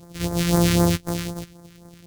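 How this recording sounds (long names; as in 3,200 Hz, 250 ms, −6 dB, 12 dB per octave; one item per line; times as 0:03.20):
a buzz of ramps at a fixed pitch in blocks of 256 samples
phaser sweep stages 2, 3.9 Hz, lowest notch 680–2,700 Hz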